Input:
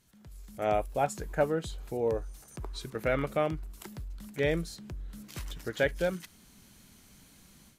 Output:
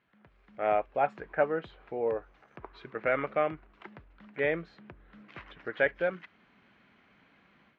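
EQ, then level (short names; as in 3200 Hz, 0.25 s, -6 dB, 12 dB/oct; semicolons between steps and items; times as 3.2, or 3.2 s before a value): HPF 700 Hz 6 dB/oct; LPF 2400 Hz 24 dB/oct; notch 910 Hz, Q 25; +4.5 dB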